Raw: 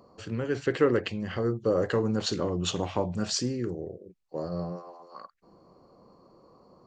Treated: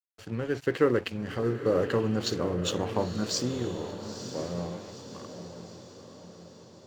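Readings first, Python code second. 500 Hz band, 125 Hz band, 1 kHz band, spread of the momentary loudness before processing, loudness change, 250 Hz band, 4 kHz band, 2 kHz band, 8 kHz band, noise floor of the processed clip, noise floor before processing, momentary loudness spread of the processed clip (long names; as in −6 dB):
0.0 dB, −0.5 dB, 0.0 dB, 17 LU, −0.5 dB, −0.5 dB, −0.5 dB, 0.0 dB, −0.5 dB, −52 dBFS, −61 dBFS, 20 LU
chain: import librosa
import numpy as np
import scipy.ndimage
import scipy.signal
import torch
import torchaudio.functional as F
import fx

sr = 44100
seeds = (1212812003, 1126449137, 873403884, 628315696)

y = np.sign(x) * np.maximum(np.abs(x) - 10.0 ** (-46.0 / 20.0), 0.0)
y = fx.echo_diffused(y, sr, ms=936, feedback_pct=53, wet_db=-10.0)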